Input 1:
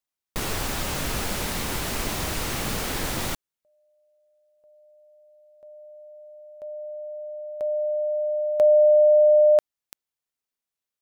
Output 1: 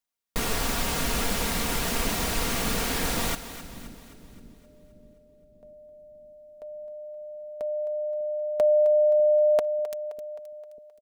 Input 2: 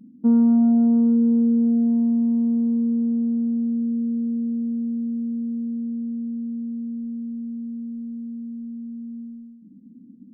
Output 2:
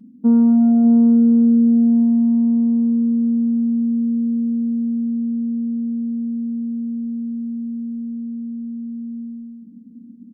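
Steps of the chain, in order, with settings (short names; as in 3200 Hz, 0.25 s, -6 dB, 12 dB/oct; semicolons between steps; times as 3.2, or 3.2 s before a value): comb 4.3 ms, depth 43%; split-band echo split 390 Hz, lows 0.596 s, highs 0.262 s, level -13 dB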